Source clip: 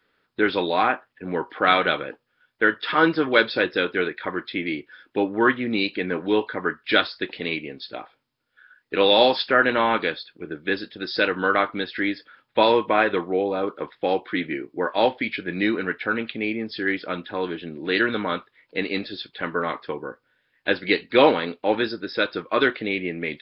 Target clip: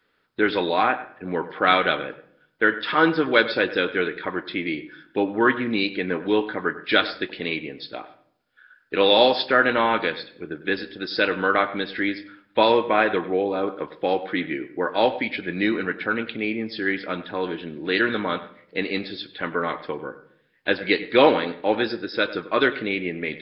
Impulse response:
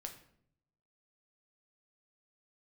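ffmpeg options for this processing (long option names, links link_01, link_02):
-filter_complex "[0:a]asplit=2[link_01][link_02];[1:a]atrim=start_sample=2205,lowpass=3200,adelay=98[link_03];[link_02][link_03]afir=irnorm=-1:irlink=0,volume=-10dB[link_04];[link_01][link_04]amix=inputs=2:normalize=0"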